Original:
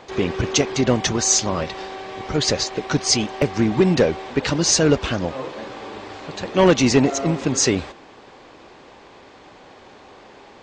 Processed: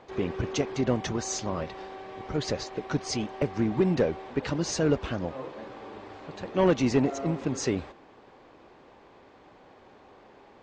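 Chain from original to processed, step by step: high shelf 2700 Hz -10.5 dB; gain -7.5 dB

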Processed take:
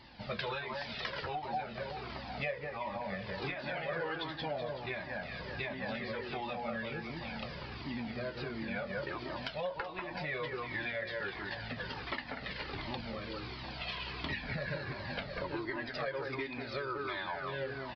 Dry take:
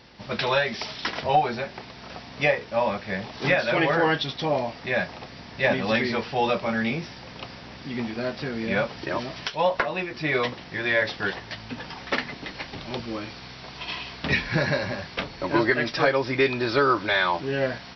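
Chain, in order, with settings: on a send: echo with dull and thin repeats by turns 0.189 s, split 2000 Hz, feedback 53%, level -4.5 dB; on the sum: downsampling 11025 Hz; compressor 6:1, threshold -31 dBFS, peak gain reduction 15 dB; cascading flanger falling 1.4 Hz

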